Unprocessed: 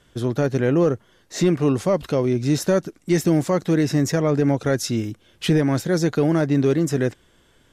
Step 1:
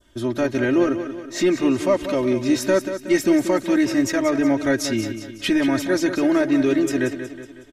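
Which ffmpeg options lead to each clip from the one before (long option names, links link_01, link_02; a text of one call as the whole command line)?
ffmpeg -i in.wav -filter_complex "[0:a]aecho=1:1:3.2:0.97,adynamicequalizer=threshold=0.0112:dfrequency=2200:dqfactor=1:tfrequency=2200:tqfactor=1:attack=5:release=100:ratio=0.375:range=3:mode=boostabove:tftype=bell,asplit=2[link_01][link_02];[link_02]aecho=0:1:184|368|552|736|920:0.316|0.155|0.0759|0.0372|0.0182[link_03];[link_01][link_03]amix=inputs=2:normalize=0,volume=-3.5dB" out.wav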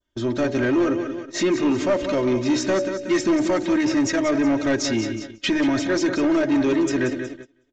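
ffmpeg -i in.wav -af "bandreject=frequency=51.78:width_type=h:width=4,bandreject=frequency=103.56:width_type=h:width=4,bandreject=frequency=155.34:width_type=h:width=4,bandreject=frequency=207.12:width_type=h:width=4,bandreject=frequency=258.9:width_type=h:width=4,bandreject=frequency=310.68:width_type=h:width=4,bandreject=frequency=362.46:width_type=h:width=4,bandreject=frequency=414.24:width_type=h:width=4,bandreject=frequency=466.02:width_type=h:width=4,bandreject=frequency=517.8:width_type=h:width=4,bandreject=frequency=569.58:width_type=h:width=4,bandreject=frequency=621.36:width_type=h:width=4,bandreject=frequency=673.14:width_type=h:width=4,bandreject=frequency=724.92:width_type=h:width=4,bandreject=frequency=776.7:width_type=h:width=4,bandreject=frequency=828.48:width_type=h:width=4,bandreject=frequency=880.26:width_type=h:width=4,agate=range=-22dB:threshold=-34dB:ratio=16:detection=peak,aresample=16000,asoftclip=type=tanh:threshold=-16dB,aresample=44100,volume=2dB" out.wav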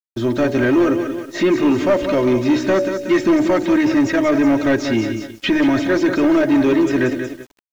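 ffmpeg -i in.wav -filter_complex "[0:a]acrossover=split=3700[link_01][link_02];[link_02]acompressor=threshold=-46dB:ratio=4:attack=1:release=60[link_03];[link_01][link_03]amix=inputs=2:normalize=0,acrusher=bits=8:mix=0:aa=0.000001,volume=5dB" out.wav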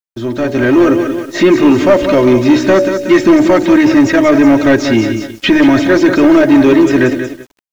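ffmpeg -i in.wav -af "dynaudnorm=framelen=140:gausssize=9:maxgain=11.5dB" out.wav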